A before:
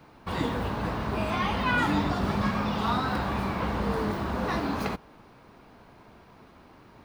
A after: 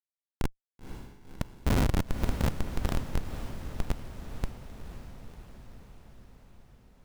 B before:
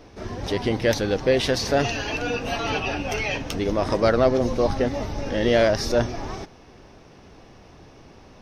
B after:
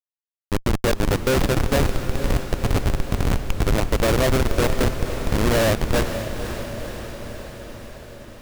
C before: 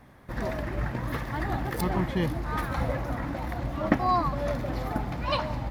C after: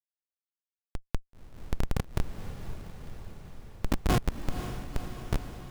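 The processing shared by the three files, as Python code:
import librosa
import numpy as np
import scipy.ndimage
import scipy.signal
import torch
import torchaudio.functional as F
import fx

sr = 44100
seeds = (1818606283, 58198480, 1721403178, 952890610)

y = fx.schmitt(x, sr, flips_db=-18.0)
y = fx.echo_diffused(y, sr, ms=517, feedback_pct=66, wet_db=-9.0)
y = F.gain(torch.from_numpy(y), 6.5).numpy()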